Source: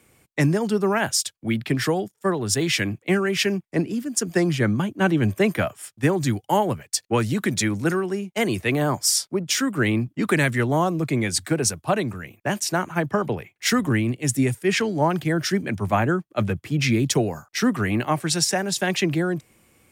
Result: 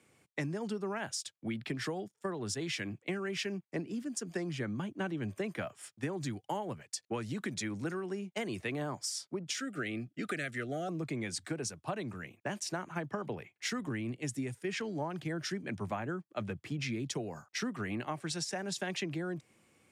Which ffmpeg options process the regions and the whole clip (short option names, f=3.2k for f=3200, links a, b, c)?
-filter_complex "[0:a]asettb=1/sr,asplit=3[a][b][c];[a]atrim=end=9.544[d];[b]atrim=start=9.54:end=10.89,asetpts=PTS-STARTPTS,afade=t=in:d=0.004:c=qsin,afade=t=out:st=1.346:d=0.004:c=qsin,asuperstop=centerf=960:order=20:qfactor=2.4,lowshelf=f=350:g=-7[e];[c]atrim=start=10.886[f];[d][e]acrossfade=d=0.004:c1=hsin:c2=qsin[g];[g][f]acrossfade=d=0.004:c1=qsin:c2=hsin,highpass=110,acompressor=threshold=-26dB:ratio=6,lowpass=8.5k,volume=-7.5dB"